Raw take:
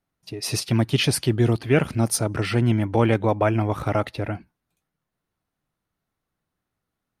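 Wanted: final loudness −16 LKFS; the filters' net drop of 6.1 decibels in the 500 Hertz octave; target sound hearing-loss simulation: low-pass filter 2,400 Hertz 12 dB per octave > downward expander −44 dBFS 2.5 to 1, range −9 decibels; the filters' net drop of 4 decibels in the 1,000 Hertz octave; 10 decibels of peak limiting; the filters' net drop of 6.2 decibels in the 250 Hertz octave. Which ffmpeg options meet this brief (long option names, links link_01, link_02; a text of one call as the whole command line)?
ffmpeg -i in.wav -af "equalizer=frequency=250:width_type=o:gain=-6.5,equalizer=frequency=500:width_type=o:gain=-5,equalizer=frequency=1000:width_type=o:gain=-3,alimiter=limit=-19dB:level=0:latency=1,lowpass=2400,agate=range=-9dB:threshold=-44dB:ratio=2.5,volume=14.5dB" out.wav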